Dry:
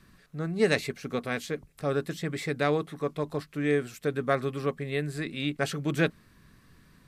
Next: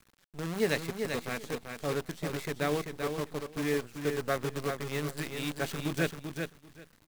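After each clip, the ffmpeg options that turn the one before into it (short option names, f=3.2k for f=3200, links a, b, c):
-filter_complex "[0:a]acrusher=bits=6:dc=4:mix=0:aa=0.000001,asplit=2[a][b];[b]aecho=0:1:389|778|1167:0.501|0.0802|0.0128[c];[a][c]amix=inputs=2:normalize=0,volume=-5dB"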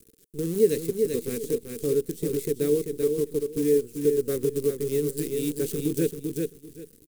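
-filter_complex "[0:a]firequalizer=gain_entry='entry(140,0);entry(450,11);entry(630,-21);entry(2700,-9);entry(9000,8)':delay=0.05:min_phase=1,asplit=2[a][b];[b]acompressor=threshold=-32dB:ratio=6,volume=3dB[c];[a][c]amix=inputs=2:normalize=0,volume=-2dB"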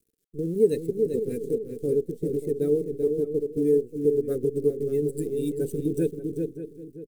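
-filter_complex "[0:a]afftdn=nr=18:nf=-36,asplit=2[a][b];[b]adelay=583.1,volume=-12dB,highshelf=f=4k:g=-13.1[c];[a][c]amix=inputs=2:normalize=0"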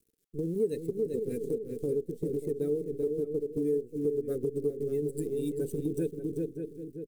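-af "acompressor=threshold=-32dB:ratio=2"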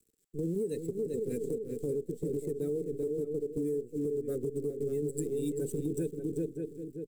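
-filter_complex "[0:a]equalizer=f=7.7k:w=6.5:g=11,acrossover=split=180|5600[a][b][c];[b]alimiter=level_in=3dB:limit=-24dB:level=0:latency=1:release=30,volume=-3dB[d];[a][d][c]amix=inputs=3:normalize=0"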